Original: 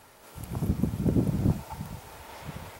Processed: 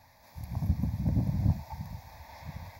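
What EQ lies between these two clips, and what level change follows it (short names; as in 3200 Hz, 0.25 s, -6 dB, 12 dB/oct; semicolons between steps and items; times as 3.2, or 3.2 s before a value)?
bell 80 Hz +6 dB 1.2 oct; fixed phaser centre 2000 Hz, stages 8; -3.0 dB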